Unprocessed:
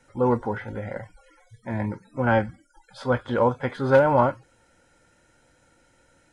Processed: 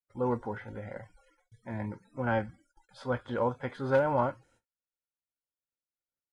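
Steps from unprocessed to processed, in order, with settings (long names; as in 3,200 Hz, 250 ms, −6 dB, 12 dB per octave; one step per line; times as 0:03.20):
noise gate −55 dBFS, range −39 dB
level −8.5 dB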